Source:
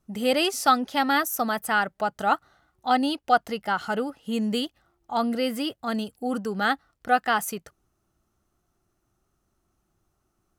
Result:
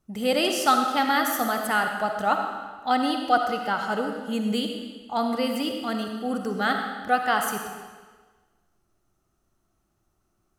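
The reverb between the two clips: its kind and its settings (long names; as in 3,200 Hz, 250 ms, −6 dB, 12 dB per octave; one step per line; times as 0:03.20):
comb and all-pass reverb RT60 1.4 s, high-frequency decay 0.95×, pre-delay 20 ms, DRR 3.5 dB
level −1 dB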